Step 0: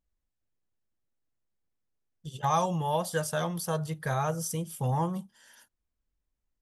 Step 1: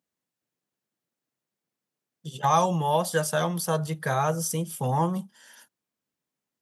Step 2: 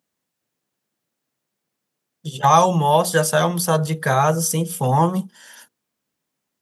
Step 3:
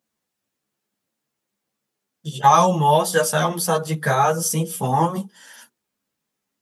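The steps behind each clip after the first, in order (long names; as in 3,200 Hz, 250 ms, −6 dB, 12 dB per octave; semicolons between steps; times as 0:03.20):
high-pass filter 140 Hz 24 dB per octave; level +5 dB
mains-hum notches 60/120/180/240/300/360/420/480 Hz; level +8 dB
string-ensemble chorus; level +2.5 dB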